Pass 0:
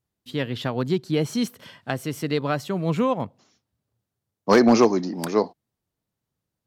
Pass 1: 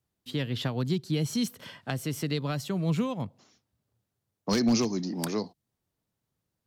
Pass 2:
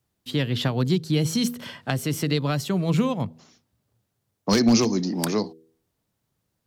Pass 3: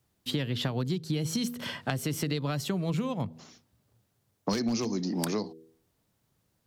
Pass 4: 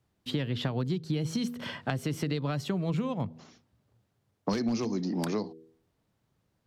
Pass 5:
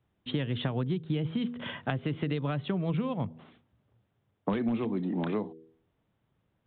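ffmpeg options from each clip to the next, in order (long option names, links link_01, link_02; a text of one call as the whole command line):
ffmpeg -i in.wav -filter_complex "[0:a]acrossover=split=210|3000[link_01][link_02][link_03];[link_02]acompressor=threshold=-33dB:ratio=5[link_04];[link_01][link_04][link_03]amix=inputs=3:normalize=0" out.wav
ffmpeg -i in.wav -af "bandreject=frequency=80.54:width_type=h:width=4,bandreject=frequency=161.08:width_type=h:width=4,bandreject=frequency=241.62:width_type=h:width=4,bandreject=frequency=322.16:width_type=h:width=4,bandreject=frequency=402.7:width_type=h:width=4,bandreject=frequency=483.24:width_type=h:width=4,volume=6.5dB" out.wav
ffmpeg -i in.wav -af "acompressor=threshold=-30dB:ratio=6,volume=2.5dB" out.wav
ffmpeg -i in.wav -af "lowpass=frequency=3100:poles=1" out.wav
ffmpeg -i in.wav -af "aresample=8000,aresample=44100" out.wav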